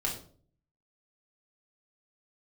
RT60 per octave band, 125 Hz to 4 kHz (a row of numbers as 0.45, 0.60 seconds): 0.80, 0.65, 0.55, 0.40, 0.35, 0.35 seconds